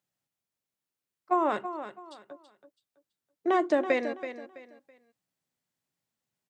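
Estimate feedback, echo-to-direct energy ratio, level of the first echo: 28%, -10.5 dB, -11.0 dB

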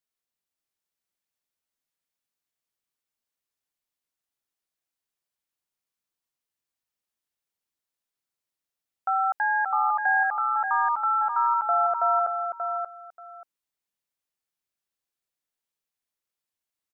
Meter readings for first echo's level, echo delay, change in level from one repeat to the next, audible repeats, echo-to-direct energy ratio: -5.5 dB, 583 ms, -14.5 dB, 2, -5.5 dB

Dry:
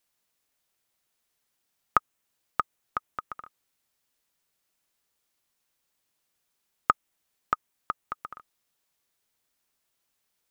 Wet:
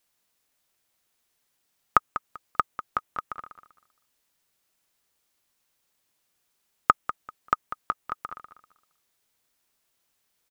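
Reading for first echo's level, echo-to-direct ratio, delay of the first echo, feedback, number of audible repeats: -12.0 dB, -12.0 dB, 195 ms, 23%, 2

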